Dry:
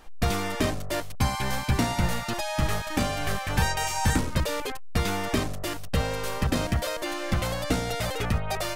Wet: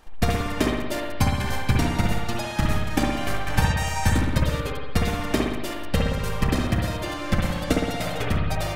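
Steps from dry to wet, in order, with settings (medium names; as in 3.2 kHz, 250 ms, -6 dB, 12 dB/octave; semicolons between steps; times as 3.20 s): transient shaper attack +7 dB, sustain -5 dB; spring tank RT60 1.2 s, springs 58 ms, chirp 30 ms, DRR -0.5 dB; trim -2.5 dB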